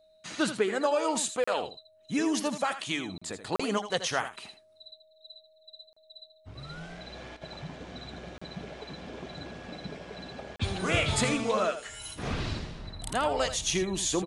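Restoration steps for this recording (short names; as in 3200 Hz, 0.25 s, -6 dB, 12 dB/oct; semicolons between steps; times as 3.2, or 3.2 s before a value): notch 630 Hz, Q 30; interpolate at 1.44/3.18/3.56/5.93/8.38/10.56, 35 ms; inverse comb 81 ms -11 dB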